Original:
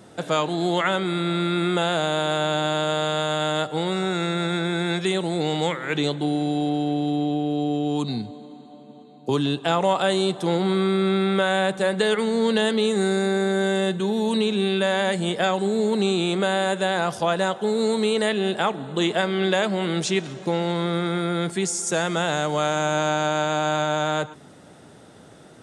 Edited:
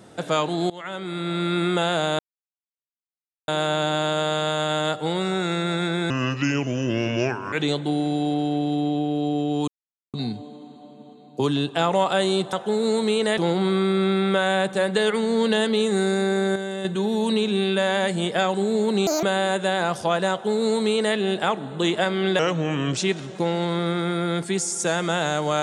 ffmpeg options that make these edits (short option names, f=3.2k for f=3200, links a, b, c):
-filter_complex "[0:a]asplit=14[a][b][c][d][e][f][g][h][i][j][k][l][m][n];[a]atrim=end=0.7,asetpts=PTS-STARTPTS,afade=t=out:st=0.696:d=0.004:c=hsin:silence=0.0841395[o];[b]atrim=start=0.7:end=2.19,asetpts=PTS-STARTPTS,afade=t=in:d=0.84:silence=0.0841395,afade=t=out:st=1.486:d=0.004:c=hsin,apad=pad_dur=1.29[p];[c]atrim=start=2.19:end=4.814,asetpts=PTS-STARTPTS,afade=t=in:d=0.004:c=hsin[q];[d]atrim=start=4.81:end=5.88,asetpts=PTS-STARTPTS,asetrate=33075,aresample=44100[r];[e]atrim=start=5.876:end=8.03,asetpts=PTS-STARTPTS,afade=t=out:st=2.15:d=0.004:c=hsin,apad=pad_dur=0.46[s];[f]atrim=start=8.03:end=10.422,asetpts=PTS-STARTPTS,afade=t=in:d=0.004:c=hsin[t];[g]atrim=start=17.478:end=18.332[u];[h]atrim=start=10.418:end=13.602[v];[i]atrim=start=13.598:end=13.892,asetpts=PTS-STARTPTS,volume=-7.5dB[w];[j]atrim=start=13.888:end=16.114[x];[k]atrim=start=16.11:end=16.4,asetpts=PTS-STARTPTS,asetrate=78057,aresample=44100,atrim=end_sample=7225,asetpts=PTS-STARTPTS[y];[l]atrim=start=16.396:end=19.564[z];[m]atrim=start=19.56:end=20.04,asetpts=PTS-STARTPTS,asetrate=36603,aresample=44100[aa];[n]atrim=start=20.036[ab];[o][p][q]concat=n=3:v=0:a=1[ac];[ac][r]acrossfade=d=0.004:c1=hsin:c2=hsin[ad];[s][t]concat=n=2:v=0:a=1[ae];[ad][ae]acrossfade=d=0.004:c1=hsin:c2=hsin[af];[af][u]acrossfade=d=0.004:c1=hsin:c2=hsin[ag];[ag][v]acrossfade=d=0.004:c1=hsin:c2=hsin[ah];[ah][w]acrossfade=d=0.004:c1=hsin:c2=hsin[ai];[ai][x]acrossfade=d=0.004:c1=hsin:c2=hsin[aj];[aj][y]acrossfade=d=0.004:c1=hsin:c2=hsin[ak];[ak][z]acrossfade=d=0.004:c1=hsin:c2=hsin[al];[al][aa]acrossfade=d=0.004:c1=hsin:c2=hsin[am];[am][ab]acrossfade=d=0.004:c1=hsin:c2=hsin"